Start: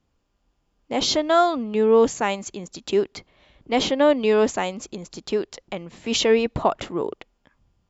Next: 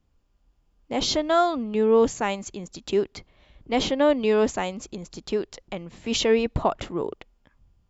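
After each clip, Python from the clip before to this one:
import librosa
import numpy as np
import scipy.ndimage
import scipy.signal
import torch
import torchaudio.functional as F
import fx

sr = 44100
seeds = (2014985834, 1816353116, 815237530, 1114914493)

y = fx.low_shelf(x, sr, hz=98.0, db=11.0)
y = y * 10.0 ** (-3.0 / 20.0)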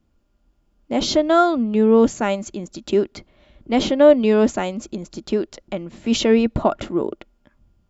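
y = fx.small_body(x, sr, hz=(230.0, 330.0, 590.0, 1400.0), ring_ms=45, db=8)
y = y * 10.0 ** (1.5 / 20.0)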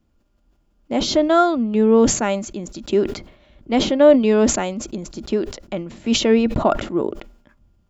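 y = fx.sustainer(x, sr, db_per_s=100.0)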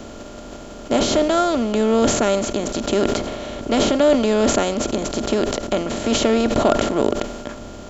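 y = fx.bin_compress(x, sr, power=0.4)
y = y * 10.0 ** (-5.5 / 20.0)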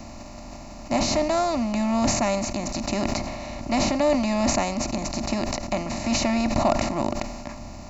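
y = fx.fixed_phaser(x, sr, hz=2200.0, stages=8)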